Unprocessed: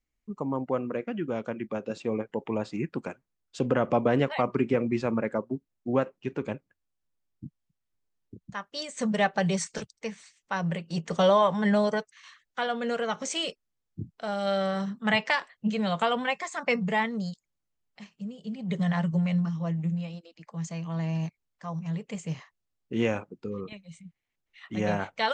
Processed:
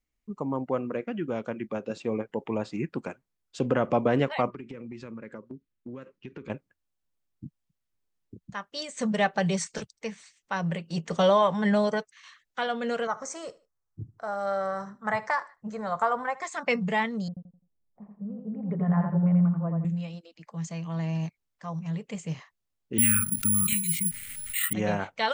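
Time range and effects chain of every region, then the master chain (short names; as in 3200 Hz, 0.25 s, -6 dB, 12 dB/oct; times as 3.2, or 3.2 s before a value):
4.5–6.5 low-pass opened by the level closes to 2400 Hz, open at -20 dBFS + bell 750 Hz -14.5 dB 0.57 oct + compressor 12:1, threshold -36 dBFS
13.07–16.42 EQ curve 130 Hz 0 dB, 180 Hz -11 dB, 1200 Hz +4 dB, 2000 Hz -6 dB, 2900 Hz -23 dB, 6000 Hz -3 dB, 9600 Hz -6 dB + feedback echo 75 ms, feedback 29%, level -20 dB
17.28–19.85 low-pass opened by the level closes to 610 Hz, open at -24.5 dBFS + LPF 1400 Hz 24 dB/oct + feedback echo 85 ms, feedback 31%, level -4 dB
22.98–24.73 Chebyshev band-stop 240–1300 Hz, order 4 + careless resampling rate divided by 4×, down filtered, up zero stuff + fast leveller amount 70%
whole clip: dry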